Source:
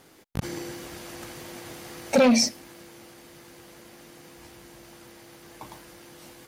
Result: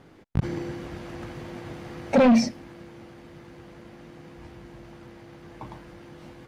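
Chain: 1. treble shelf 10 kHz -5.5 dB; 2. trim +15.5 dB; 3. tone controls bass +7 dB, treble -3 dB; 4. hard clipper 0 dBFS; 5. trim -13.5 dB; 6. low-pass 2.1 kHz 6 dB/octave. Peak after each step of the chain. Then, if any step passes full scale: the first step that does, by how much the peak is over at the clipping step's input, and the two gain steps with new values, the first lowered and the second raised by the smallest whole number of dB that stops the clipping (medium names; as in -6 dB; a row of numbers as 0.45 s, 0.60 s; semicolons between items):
-11.5 dBFS, +4.0 dBFS, +7.0 dBFS, 0.0 dBFS, -13.5 dBFS, -13.5 dBFS; step 2, 7.0 dB; step 2 +8.5 dB, step 5 -6.5 dB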